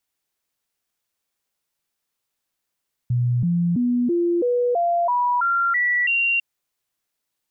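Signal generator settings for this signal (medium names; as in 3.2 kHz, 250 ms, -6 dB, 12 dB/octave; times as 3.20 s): stepped sine 122 Hz up, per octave 2, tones 10, 0.33 s, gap 0.00 s -17 dBFS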